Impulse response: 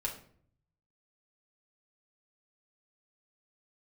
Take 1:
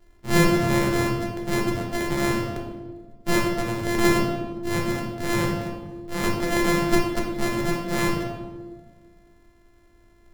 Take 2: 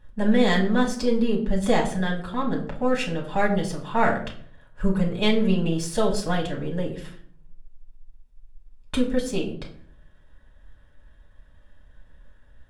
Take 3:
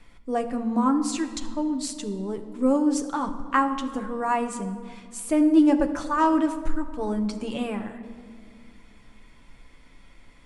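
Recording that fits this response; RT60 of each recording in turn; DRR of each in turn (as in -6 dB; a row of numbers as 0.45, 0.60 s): 2; 1.5, 0.55, 2.2 s; -1.0, -2.0, 4.0 dB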